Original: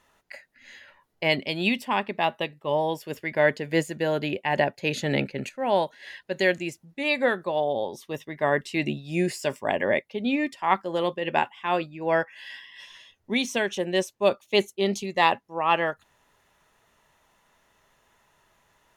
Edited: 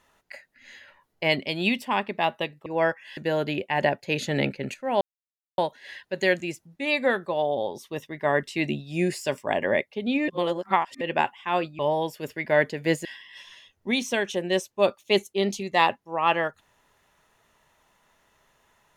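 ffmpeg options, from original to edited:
ffmpeg -i in.wav -filter_complex "[0:a]asplit=8[link_01][link_02][link_03][link_04][link_05][link_06][link_07][link_08];[link_01]atrim=end=2.662[link_09];[link_02]atrim=start=11.968:end=12.482[link_10];[link_03]atrim=start=3.918:end=5.76,asetpts=PTS-STARTPTS,afade=type=out:start_time=1.838:duration=0.004:curve=hsin,apad=pad_dur=0.57[link_11];[link_04]atrim=start=5.76:end=10.462,asetpts=PTS-STARTPTS,afade=type=in:duration=0.004:curve=hsin[link_12];[link_05]atrim=start=10.458:end=11.192,asetpts=PTS-STARTPTS,areverse[link_13];[link_06]atrim=start=11.188:end=11.972[link_14];[link_07]atrim=start=2.658:end=3.922[link_15];[link_08]atrim=start=12.478[link_16];[link_09][link_10]acrossfade=duration=0.004:curve1=hsin:curve2=hsin[link_17];[link_11][link_12]concat=n=2:v=0:a=1[link_18];[link_17][link_18]acrossfade=duration=0.004:curve1=hsin:curve2=hsin[link_19];[link_19][link_13]acrossfade=duration=0.004:curve1=hsin:curve2=hsin[link_20];[link_20][link_14]acrossfade=duration=0.004:curve1=hsin:curve2=hsin[link_21];[link_21][link_15]acrossfade=duration=0.004:curve1=hsin:curve2=hsin[link_22];[link_22][link_16]acrossfade=duration=0.004:curve1=hsin:curve2=hsin" out.wav

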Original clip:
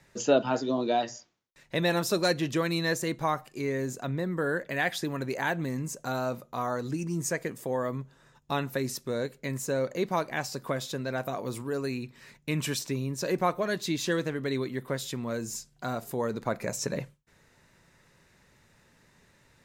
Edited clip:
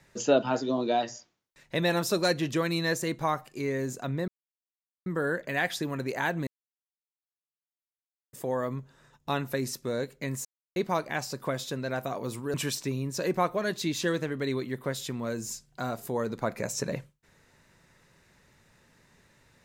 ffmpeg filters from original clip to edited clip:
ffmpeg -i in.wav -filter_complex "[0:a]asplit=7[link_01][link_02][link_03][link_04][link_05][link_06][link_07];[link_01]atrim=end=4.28,asetpts=PTS-STARTPTS,afade=type=out:start_time=4.276:duration=0.004:curve=hsin,apad=pad_dur=0.78[link_08];[link_02]atrim=start=4.28:end=5.69,asetpts=PTS-STARTPTS,afade=type=in:duration=0.004:curve=hsin,afade=type=out:start_time=1.406:duration=0.004:curve=hsin[link_09];[link_03]atrim=start=5.69:end=7.55,asetpts=PTS-STARTPTS,volume=0[link_10];[link_04]atrim=start=7.55:end=9.67,asetpts=PTS-STARTPTS,afade=type=in:duration=0.004:curve=hsin,afade=type=out:start_time=2.116:duration=0.004:curve=hsin[link_11];[link_05]atrim=start=9.67:end=9.98,asetpts=PTS-STARTPTS,volume=0[link_12];[link_06]atrim=start=9.98:end=11.762,asetpts=PTS-STARTPTS,afade=type=in:duration=0.004:curve=hsin[link_13];[link_07]atrim=start=12.578[link_14];[link_08][link_09][link_10][link_11][link_12][link_13]concat=n=6:v=0:a=1[link_15];[link_15][link_14]acrossfade=duration=0.004:curve1=hsin:curve2=hsin" out.wav

